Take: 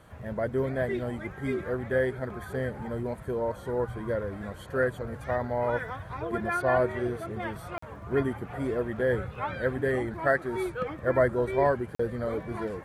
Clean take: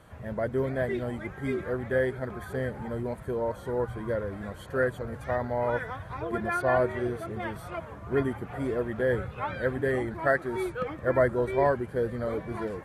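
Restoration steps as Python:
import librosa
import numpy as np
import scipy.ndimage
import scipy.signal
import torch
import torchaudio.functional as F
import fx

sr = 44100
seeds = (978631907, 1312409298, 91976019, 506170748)

y = fx.fix_declick_ar(x, sr, threshold=6.5)
y = fx.fix_interpolate(y, sr, at_s=(7.78, 11.95), length_ms=44.0)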